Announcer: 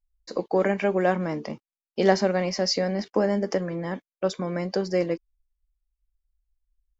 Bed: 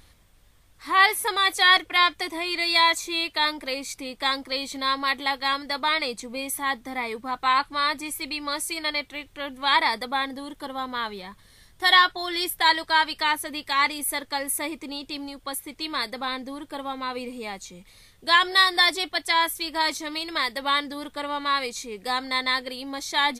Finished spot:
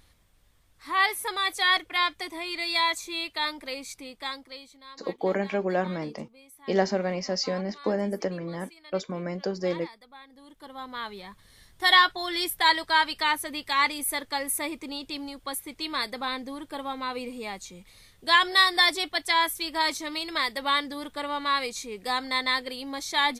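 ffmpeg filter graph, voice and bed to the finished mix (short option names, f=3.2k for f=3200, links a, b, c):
-filter_complex "[0:a]adelay=4700,volume=-4dB[a];[1:a]volume=15.5dB,afade=t=out:st=3.89:d=0.89:silence=0.141254,afade=t=in:st=10.27:d=1.32:silence=0.0891251[b];[a][b]amix=inputs=2:normalize=0"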